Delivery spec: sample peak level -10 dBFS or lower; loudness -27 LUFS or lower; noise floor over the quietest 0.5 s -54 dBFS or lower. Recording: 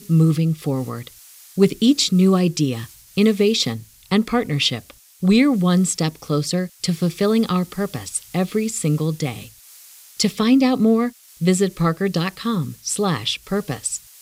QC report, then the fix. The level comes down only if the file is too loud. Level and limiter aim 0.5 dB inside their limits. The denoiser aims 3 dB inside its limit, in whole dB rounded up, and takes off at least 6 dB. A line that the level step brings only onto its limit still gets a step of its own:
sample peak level -4.0 dBFS: fail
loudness -20.0 LUFS: fail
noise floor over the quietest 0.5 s -45 dBFS: fail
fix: noise reduction 6 dB, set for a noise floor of -45 dBFS; trim -7.5 dB

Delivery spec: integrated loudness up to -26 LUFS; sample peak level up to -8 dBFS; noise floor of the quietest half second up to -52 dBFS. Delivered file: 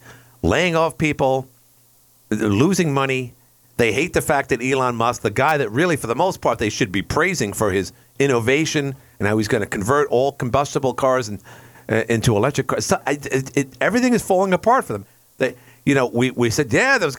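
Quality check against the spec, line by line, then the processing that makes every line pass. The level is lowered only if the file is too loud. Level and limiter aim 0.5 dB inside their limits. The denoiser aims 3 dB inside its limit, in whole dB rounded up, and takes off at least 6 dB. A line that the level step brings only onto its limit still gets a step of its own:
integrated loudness -19.5 LUFS: fail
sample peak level -4.5 dBFS: fail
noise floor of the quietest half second -54 dBFS: pass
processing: trim -7 dB

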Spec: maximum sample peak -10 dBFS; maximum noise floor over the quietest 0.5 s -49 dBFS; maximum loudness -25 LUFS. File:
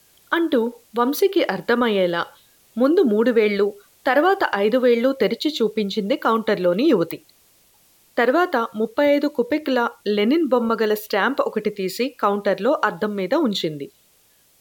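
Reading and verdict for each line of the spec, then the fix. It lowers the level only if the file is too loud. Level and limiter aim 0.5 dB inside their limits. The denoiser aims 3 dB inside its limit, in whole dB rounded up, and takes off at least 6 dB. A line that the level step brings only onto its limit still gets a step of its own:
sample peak -5.5 dBFS: fail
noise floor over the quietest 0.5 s -58 dBFS: pass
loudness -20.5 LUFS: fail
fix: trim -5 dB

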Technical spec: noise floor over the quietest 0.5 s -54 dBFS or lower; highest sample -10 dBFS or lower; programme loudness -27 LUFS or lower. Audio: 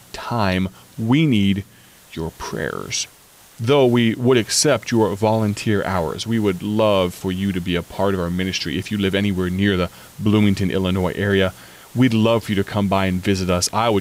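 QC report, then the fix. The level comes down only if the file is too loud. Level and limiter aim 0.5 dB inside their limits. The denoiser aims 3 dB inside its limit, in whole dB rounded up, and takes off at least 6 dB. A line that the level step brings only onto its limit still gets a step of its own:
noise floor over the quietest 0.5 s -48 dBFS: fail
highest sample -6.0 dBFS: fail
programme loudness -19.5 LUFS: fail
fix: trim -8 dB

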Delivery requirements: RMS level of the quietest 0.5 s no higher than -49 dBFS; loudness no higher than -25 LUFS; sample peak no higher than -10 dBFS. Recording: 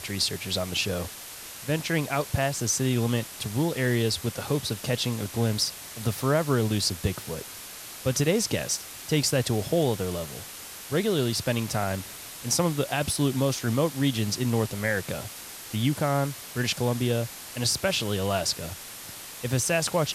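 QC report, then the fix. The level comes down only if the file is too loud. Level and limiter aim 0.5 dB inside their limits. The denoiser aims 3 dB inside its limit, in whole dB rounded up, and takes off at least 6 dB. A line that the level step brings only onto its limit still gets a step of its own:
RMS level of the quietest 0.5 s -41 dBFS: fail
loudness -27.0 LUFS: pass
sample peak -12.5 dBFS: pass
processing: noise reduction 11 dB, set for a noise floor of -41 dBFS

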